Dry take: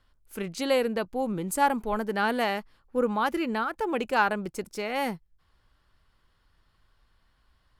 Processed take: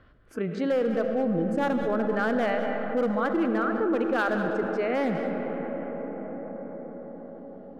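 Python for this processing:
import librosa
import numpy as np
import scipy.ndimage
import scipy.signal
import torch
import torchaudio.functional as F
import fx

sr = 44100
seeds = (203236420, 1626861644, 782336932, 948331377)

p1 = fx.highpass(x, sr, hz=120.0, slope=6)
p2 = fx.noise_reduce_blind(p1, sr, reduce_db=18)
p3 = scipy.signal.sosfilt(scipy.signal.butter(2, 1400.0, 'lowpass', fs=sr, output='sos'), p2)
p4 = fx.peak_eq(p3, sr, hz=920.0, db=-14.5, octaves=0.43)
p5 = fx.rider(p4, sr, range_db=4, speed_s=0.5)
p6 = p4 + (p5 * 10.0 ** (-0.5 / 20.0))
p7 = fx.comb_fb(p6, sr, f0_hz=330.0, decay_s=0.16, harmonics='all', damping=0.0, mix_pct=30)
p8 = np.clip(10.0 ** (21.0 / 20.0) * p7, -1.0, 1.0) / 10.0 ** (21.0 / 20.0)
p9 = p8 + 10.0 ** (-14.0 / 20.0) * np.pad(p8, (int(197 * sr / 1000.0), 0))[:len(p8)]
p10 = fx.rev_freeverb(p9, sr, rt60_s=4.8, hf_ratio=0.35, predelay_ms=30, drr_db=7.0)
y = fx.env_flatten(p10, sr, amount_pct=50)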